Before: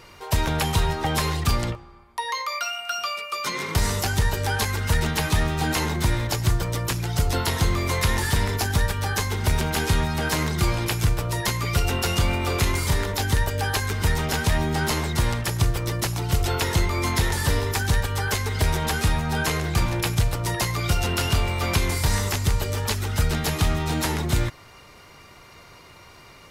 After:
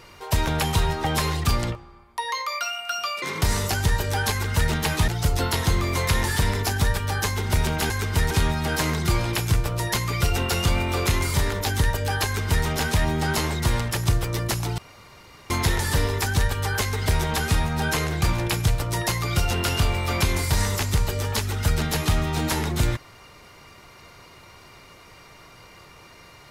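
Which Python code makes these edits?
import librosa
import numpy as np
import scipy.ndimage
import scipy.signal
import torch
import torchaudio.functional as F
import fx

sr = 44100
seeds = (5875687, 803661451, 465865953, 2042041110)

y = fx.edit(x, sr, fx.cut(start_s=3.22, length_s=0.33),
    fx.cut(start_s=5.41, length_s=1.61),
    fx.duplicate(start_s=13.78, length_s=0.41, to_s=9.84),
    fx.room_tone_fill(start_s=16.31, length_s=0.72), tone=tone)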